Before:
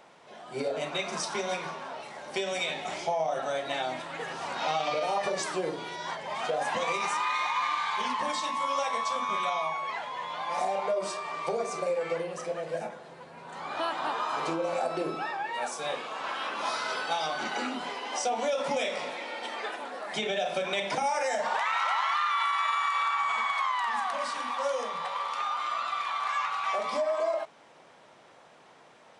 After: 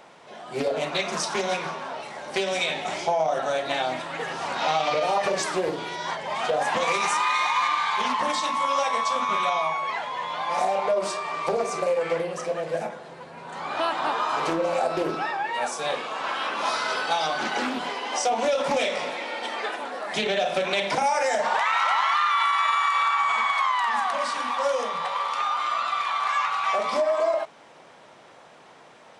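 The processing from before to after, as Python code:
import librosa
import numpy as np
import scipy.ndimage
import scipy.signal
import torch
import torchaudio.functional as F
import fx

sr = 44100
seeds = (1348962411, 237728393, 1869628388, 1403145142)

y = fx.high_shelf(x, sr, hz=6600.0, db=6.5, at=(6.83, 7.68))
y = fx.doppler_dist(y, sr, depth_ms=0.22)
y = y * librosa.db_to_amplitude(5.5)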